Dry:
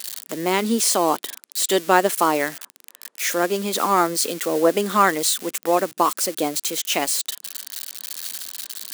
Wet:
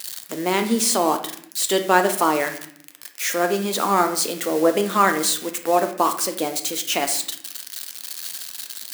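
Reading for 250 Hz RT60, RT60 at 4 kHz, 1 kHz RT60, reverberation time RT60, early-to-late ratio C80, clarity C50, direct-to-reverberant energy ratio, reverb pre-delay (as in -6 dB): 0.95 s, 0.45 s, 0.60 s, 0.65 s, 13.0 dB, 10.0 dB, 6.0 dB, 4 ms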